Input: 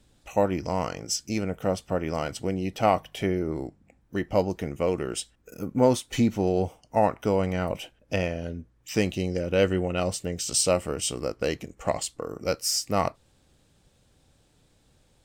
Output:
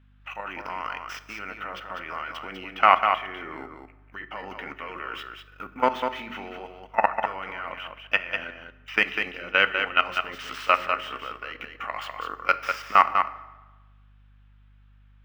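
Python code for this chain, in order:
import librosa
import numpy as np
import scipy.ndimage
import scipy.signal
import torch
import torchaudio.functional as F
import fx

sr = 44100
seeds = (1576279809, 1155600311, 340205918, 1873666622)

y = scipy.ndimage.median_filter(x, 5, mode='constant')
y = scipy.signal.sosfilt(scipy.signal.butter(2, 310.0, 'highpass', fs=sr, output='sos'), y)
y = fx.band_shelf(y, sr, hz=2000.0, db=15.0, octaves=1.7)
y = fx.hum_notches(y, sr, base_hz=60, count=9)
y = fx.level_steps(y, sr, step_db=19)
y = fx.graphic_eq(y, sr, hz=(500, 1000, 8000), db=(-5, 11, -8))
y = fx.add_hum(y, sr, base_hz=50, snr_db=28)
y = y + 10.0 ** (-6.0 / 20.0) * np.pad(y, (int(198 * sr / 1000.0), 0))[:len(y)]
y = fx.rev_fdn(y, sr, rt60_s=1.2, lf_ratio=1.0, hf_ratio=0.75, size_ms=23.0, drr_db=13.0)
y = y * 10.0 ** (-1.0 / 20.0)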